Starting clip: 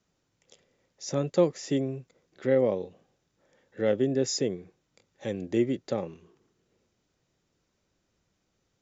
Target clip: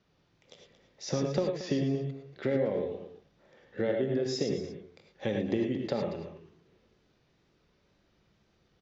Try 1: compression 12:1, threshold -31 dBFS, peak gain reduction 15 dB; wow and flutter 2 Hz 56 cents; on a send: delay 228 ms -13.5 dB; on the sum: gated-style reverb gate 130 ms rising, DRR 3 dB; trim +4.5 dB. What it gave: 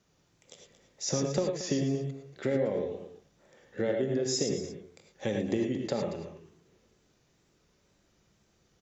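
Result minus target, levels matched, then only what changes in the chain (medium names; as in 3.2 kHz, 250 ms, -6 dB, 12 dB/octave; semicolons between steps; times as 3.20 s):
4 kHz band +3.0 dB
add after compression: low-pass 4.8 kHz 24 dB/octave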